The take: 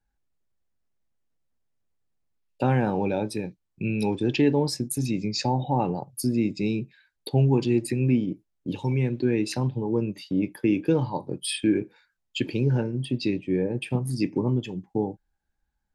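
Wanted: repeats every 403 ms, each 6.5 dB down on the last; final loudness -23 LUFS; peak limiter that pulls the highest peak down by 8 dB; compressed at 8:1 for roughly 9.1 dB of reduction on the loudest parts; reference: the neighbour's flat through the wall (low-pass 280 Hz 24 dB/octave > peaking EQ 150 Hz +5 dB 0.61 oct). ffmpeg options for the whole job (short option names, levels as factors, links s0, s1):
-af "acompressor=threshold=0.0501:ratio=8,alimiter=limit=0.0668:level=0:latency=1,lowpass=f=280:w=0.5412,lowpass=f=280:w=1.3066,equalizer=f=150:t=o:w=0.61:g=5,aecho=1:1:403|806|1209|1612|2015|2418:0.473|0.222|0.105|0.0491|0.0231|0.0109,volume=3.35"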